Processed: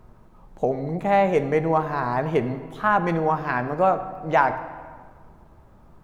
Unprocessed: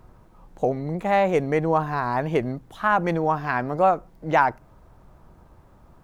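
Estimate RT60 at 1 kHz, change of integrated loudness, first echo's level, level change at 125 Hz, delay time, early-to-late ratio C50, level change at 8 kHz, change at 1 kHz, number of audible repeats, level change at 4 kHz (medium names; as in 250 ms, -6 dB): 1.6 s, +0.5 dB, no echo, 0.0 dB, no echo, 11.5 dB, no reading, +0.5 dB, no echo, -1.0 dB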